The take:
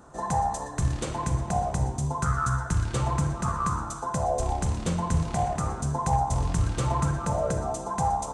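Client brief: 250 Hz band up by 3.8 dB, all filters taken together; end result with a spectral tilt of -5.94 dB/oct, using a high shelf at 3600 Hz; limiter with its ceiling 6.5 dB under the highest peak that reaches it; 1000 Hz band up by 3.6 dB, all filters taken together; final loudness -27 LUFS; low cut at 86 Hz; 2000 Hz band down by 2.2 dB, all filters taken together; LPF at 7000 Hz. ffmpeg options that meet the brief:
-af "highpass=86,lowpass=7k,equalizer=f=250:t=o:g=6.5,equalizer=f=1k:t=o:g=5.5,equalizer=f=2k:t=o:g=-8.5,highshelf=f=3.6k:g=7,volume=0.5dB,alimiter=limit=-17dB:level=0:latency=1"

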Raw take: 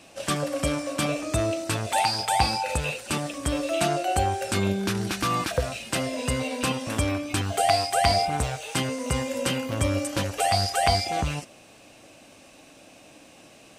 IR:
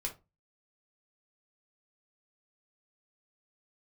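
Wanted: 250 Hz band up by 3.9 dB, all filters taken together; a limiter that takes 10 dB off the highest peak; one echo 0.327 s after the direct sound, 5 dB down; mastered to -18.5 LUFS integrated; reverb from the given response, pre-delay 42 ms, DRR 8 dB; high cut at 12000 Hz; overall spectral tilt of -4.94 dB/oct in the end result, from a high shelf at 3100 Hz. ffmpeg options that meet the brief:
-filter_complex "[0:a]lowpass=12k,equalizer=f=250:t=o:g=5,highshelf=f=3.1k:g=-7.5,alimiter=limit=-17.5dB:level=0:latency=1,aecho=1:1:327:0.562,asplit=2[a][b];[1:a]atrim=start_sample=2205,adelay=42[c];[b][c]afir=irnorm=-1:irlink=0,volume=-8.5dB[d];[a][d]amix=inputs=2:normalize=0,volume=8.5dB"

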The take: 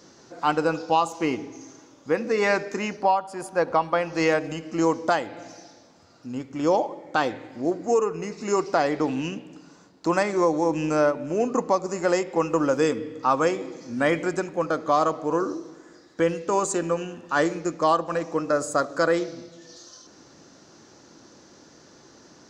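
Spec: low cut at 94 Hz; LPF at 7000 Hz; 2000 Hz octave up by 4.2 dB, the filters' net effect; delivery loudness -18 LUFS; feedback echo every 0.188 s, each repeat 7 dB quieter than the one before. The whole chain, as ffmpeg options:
-af "highpass=94,lowpass=7k,equalizer=f=2k:t=o:g=5.5,aecho=1:1:188|376|564|752|940:0.447|0.201|0.0905|0.0407|0.0183,volume=5dB"

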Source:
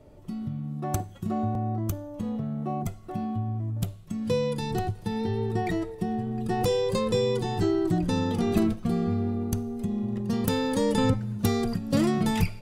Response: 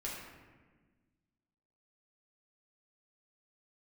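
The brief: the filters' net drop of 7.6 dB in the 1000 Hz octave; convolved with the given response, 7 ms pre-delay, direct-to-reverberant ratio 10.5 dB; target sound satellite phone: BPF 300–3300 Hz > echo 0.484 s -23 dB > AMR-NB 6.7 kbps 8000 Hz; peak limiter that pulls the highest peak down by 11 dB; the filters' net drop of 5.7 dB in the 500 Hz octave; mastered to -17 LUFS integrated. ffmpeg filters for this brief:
-filter_complex "[0:a]equalizer=f=500:t=o:g=-4,equalizer=f=1k:t=o:g=-9,alimiter=limit=-22dB:level=0:latency=1,asplit=2[a][b];[1:a]atrim=start_sample=2205,adelay=7[c];[b][c]afir=irnorm=-1:irlink=0,volume=-11.5dB[d];[a][d]amix=inputs=2:normalize=0,highpass=300,lowpass=3.3k,aecho=1:1:484:0.0708,volume=20.5dB" -ar 8000 -c:a libopencore_amrnb -b:a 6700

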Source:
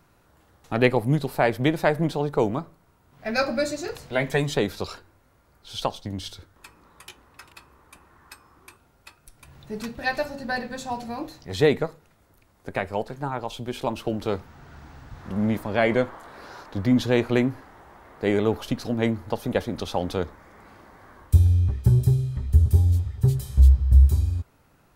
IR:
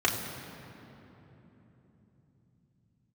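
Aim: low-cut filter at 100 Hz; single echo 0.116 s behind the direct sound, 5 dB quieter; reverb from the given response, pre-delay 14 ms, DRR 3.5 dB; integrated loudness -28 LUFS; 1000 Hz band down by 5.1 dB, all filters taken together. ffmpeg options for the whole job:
-filter_complex "[0:a]highpass=100,equalizer=f=1k:t=o:g=-7.5,aecho=1:1:116:0.562,asplit=2[a][b];[1:a]atrim=start_sample=2205,adelay=14[c];[b][c]afir=irnorm=-1:irlink=0,volume=-16dB[d];[a][d]amix=inputs=2:normalize=0,volume=-4.5dB"

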